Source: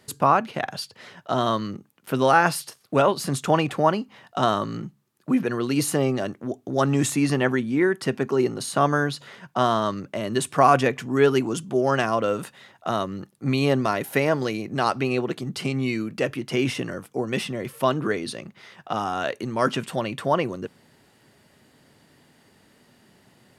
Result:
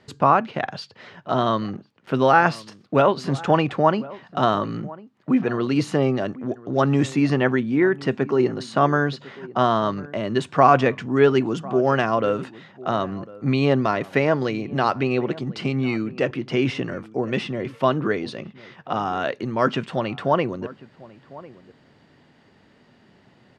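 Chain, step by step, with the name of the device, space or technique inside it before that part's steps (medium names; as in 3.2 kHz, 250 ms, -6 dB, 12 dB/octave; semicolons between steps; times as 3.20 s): shout across a valley (distance through air 150 m; echo from a far wall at 180 m, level -19 dB); trim +2.5 dB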